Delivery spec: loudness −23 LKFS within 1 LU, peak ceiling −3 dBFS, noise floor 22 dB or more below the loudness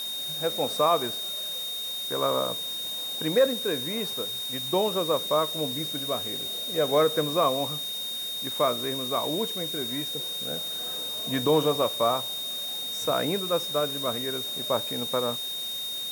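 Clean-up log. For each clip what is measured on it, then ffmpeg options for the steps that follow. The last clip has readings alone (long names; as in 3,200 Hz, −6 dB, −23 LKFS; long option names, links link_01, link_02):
interfering tone 3,700 Hz; level of the tone −31 dBFS; background noise floor −33 dBFS; target noise floor −49 dBFS; integrated loudness −27.0 LKFS; sample peak −11.0 dBFS; target loudness −23.0 LKFS
→ -af "bandreject=frequency=3700:width=30"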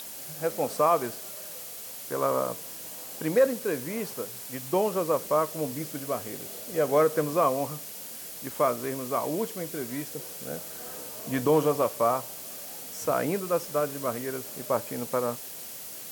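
interfering tone none found; background noise floor −41 dBFS; target noise floor −51 dBFS
→ -af "afftdn=noise_reduction=10:noise_floor=-41"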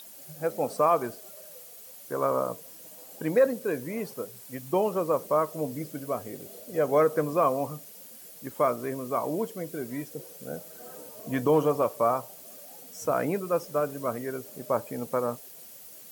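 background noise floor −47 dBFS; target noise floor −51 dBFS
→ -af "afftdn=noise_reduction=6:noise_floor=-47"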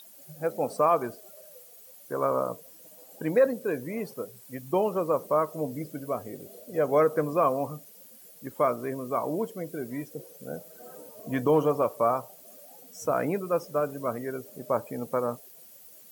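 background noise floor −51 dBFS; integrated loudness −28.5 LKFS; sample peak −12.5 dBFS; target loudness −23.0 LKFS
→ -af "volume=5.5dB"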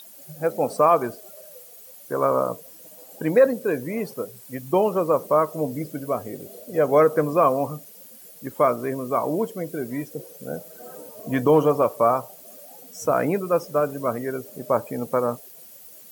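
integrated loudness −23.0 LKFS; sample peak −7.0 dBFS; background noise floor −46 dBFS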